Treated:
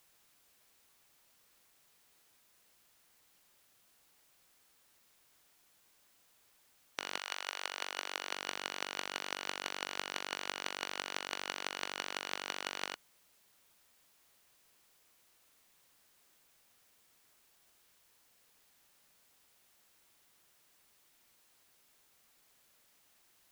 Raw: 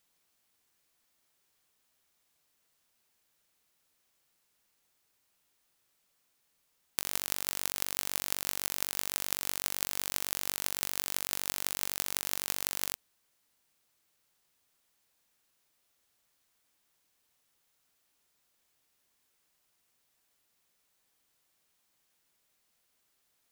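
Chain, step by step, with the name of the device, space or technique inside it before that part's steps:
split-band scrambled radio (band-splitting scrambler in four parts; band-pass filter 310–3,300 Hz; white noise bed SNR 22 dB)
0:07.18–0:08.34: high-pass filter 760 Hz → 260 Hz 12 dB per octave
level +2.5 dB

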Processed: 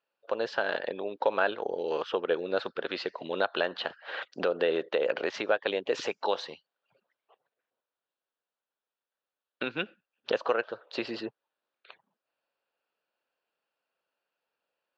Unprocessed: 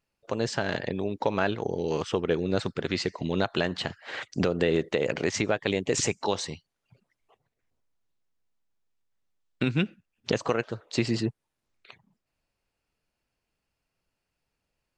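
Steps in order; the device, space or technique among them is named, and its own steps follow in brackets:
phone earpiece (loudspeaker in its box 490–3,900 Hz, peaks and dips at 530 Hz +5 dB, 1,500 Hz +4 dB, 2,100 Hz −8 dB)

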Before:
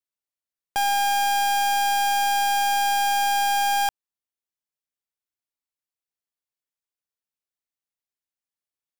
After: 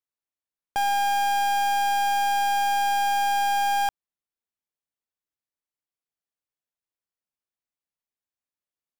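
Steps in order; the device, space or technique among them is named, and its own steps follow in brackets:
behind a face mask (high-shelf EQ 2,300 Hz −7 dB)

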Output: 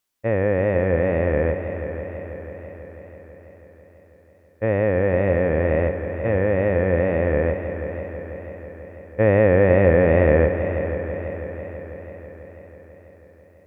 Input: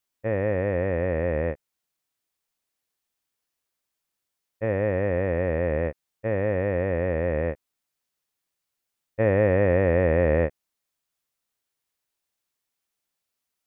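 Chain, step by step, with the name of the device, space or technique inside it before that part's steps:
multi-head tape echo (echo machine with several playback heads 164 ms, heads all three, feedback 68%, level −15 dB; tape wow and flutter)
level +4.5 dB

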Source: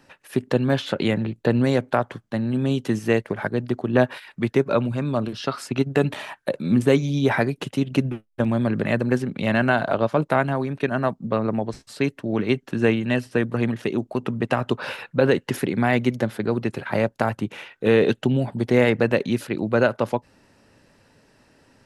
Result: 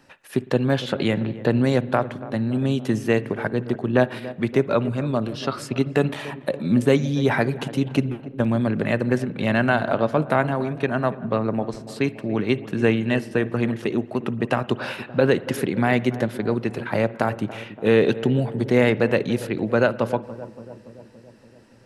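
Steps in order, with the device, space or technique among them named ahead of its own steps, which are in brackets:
dub delay into a spring reverb (feedback echo with a low-pass in the loop 285 ms, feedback 68%, low-pass 1,000 Hz, level −14.5 dB; spring reverb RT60 1.1 s, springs 53 ms, chirp 35 ms, DRR 18.5 dB)

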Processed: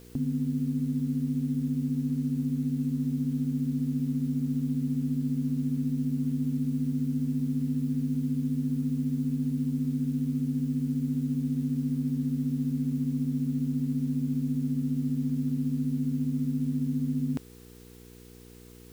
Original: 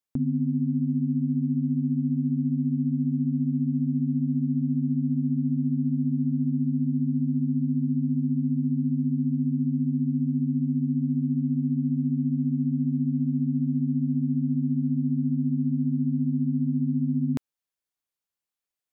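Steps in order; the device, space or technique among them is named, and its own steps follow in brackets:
video cassette with head-switching buzz (hum with harmonics 60 Hz, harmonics 8, −47 dBFS −2 dB per octave; white noise bed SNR 29 dB)
level −3.5 dB

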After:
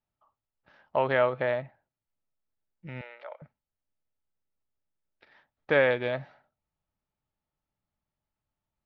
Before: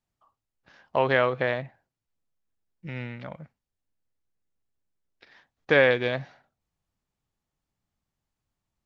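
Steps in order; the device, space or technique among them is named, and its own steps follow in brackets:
0:03.01–0:03.42: Butterworth high-pass 440 Hz 36 dB per octave
inside a cardboard box (low-pass filter 3,600 Hz 12 dB per octave; hollow resonant body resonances 610/870/1,300 Hz, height 7 dB)
level −4.5 dB

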